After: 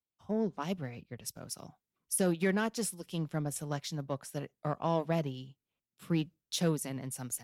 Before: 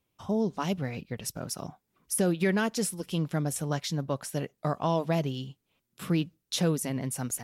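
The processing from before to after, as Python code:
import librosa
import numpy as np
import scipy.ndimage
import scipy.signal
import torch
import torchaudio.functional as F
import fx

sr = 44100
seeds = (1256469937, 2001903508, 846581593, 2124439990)

y = fx.cheby_harmonics(x, sr, harmonics=(4, 7), levels_db=(-43, -30), full_scale_db=-15.0)
y = fx.band_widen(y, sr, depth_pct=40)
y = F.gain(torch.from_numpy(y), -4.5).numpy()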